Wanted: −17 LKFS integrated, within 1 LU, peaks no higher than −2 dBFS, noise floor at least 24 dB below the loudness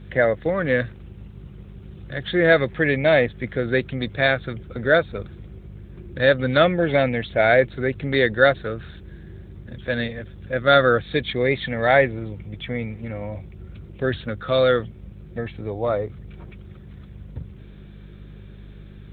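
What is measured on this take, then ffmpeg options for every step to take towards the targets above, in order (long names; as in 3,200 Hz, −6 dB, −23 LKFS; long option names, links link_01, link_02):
mains hum 50 Hz; hum harmonics up to 200 Hz; level of the hum −40 dBFS; integrated loudness −21.0 LKFS; sample peak −2.0 dBFS; target loudness −17.0 LKFS
→ -af "bandreject=frequency=50:width_type=h:width=4,bandreject=frequency=100:width_type=h:width=4,bandreject=frequency=150:width_type=h:width=4,bandreject=frequency=200:width_type=h:width=4"
-af "volume=4dB,alimiter=limit=-2dB:level=0:latency=1"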